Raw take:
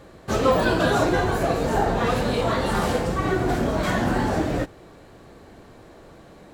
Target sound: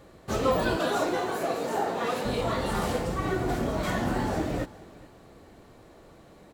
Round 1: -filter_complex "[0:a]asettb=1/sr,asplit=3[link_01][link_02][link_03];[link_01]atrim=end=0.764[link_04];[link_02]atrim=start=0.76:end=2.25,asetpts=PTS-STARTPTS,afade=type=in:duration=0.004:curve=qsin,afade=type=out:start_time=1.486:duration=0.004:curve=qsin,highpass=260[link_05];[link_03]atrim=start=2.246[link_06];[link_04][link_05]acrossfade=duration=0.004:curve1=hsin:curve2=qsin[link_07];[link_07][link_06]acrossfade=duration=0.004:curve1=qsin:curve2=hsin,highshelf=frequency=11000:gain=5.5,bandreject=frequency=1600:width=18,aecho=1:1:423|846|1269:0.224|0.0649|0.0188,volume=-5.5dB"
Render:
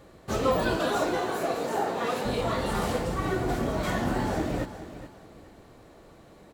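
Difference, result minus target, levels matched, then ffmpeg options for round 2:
echo-to-direct +8 dB
-filter_complex "[0:a]asettb=1/sr,asplit=3[link_01][link_02][link_03];[link_01]atrim=end=0.764[link_04];[link_02]atrim=start=0.76:end=2.25,asetpts=PTS-STARTPTS,afade=type=in:duration=0.004:curve=qsin,afade=type=out:start_time=1.486:duration=0.004:curve=qsin,highpass=260[link_05];[link_03]atrim=start=2.246[link_06];[link_04][link_05]acrossfade=duration=0.004:curve1=hsin:curve2=qsin[link_07];[link_07][link_06]acrossfade=duration=0.004:curve1=qsin:curve2=hsin,highshelf=frequency=11000:gain=5.5,bandreject=frequency=1600:width=18,aecho=1:1:423|846:0.0891|0.0258,volume=-5.5dB"

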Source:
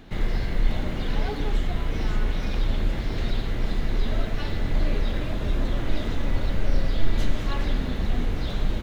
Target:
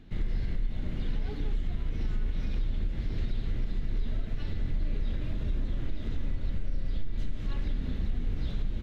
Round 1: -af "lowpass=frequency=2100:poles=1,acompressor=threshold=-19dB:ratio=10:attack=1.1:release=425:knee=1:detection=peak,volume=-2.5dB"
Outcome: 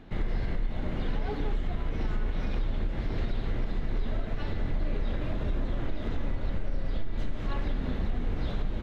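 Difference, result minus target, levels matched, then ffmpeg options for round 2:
1,000 Hz band +10.0 dB
-af "lowpass=frequency=2100:poles=1,acompressor=threshold=-19dB:ratio=10:attack=1.1:release=425:knee=1:detection=peak,equalizer=frequency=830:width_type=o:width=2.5:gain=-12,volume=-2.5dB"

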